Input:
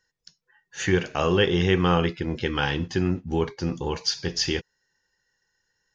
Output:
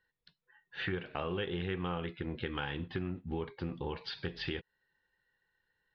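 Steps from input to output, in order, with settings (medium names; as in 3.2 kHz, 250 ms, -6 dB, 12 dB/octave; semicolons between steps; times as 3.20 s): elliptic low-pass 3.9 kHz, stop band 50 dB; compression 4:1, threshold -31 dBFS, peak gain reduction 12.5 dB; loudspeaker Doppler distortion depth 0.12 ms; trim -3.5 dB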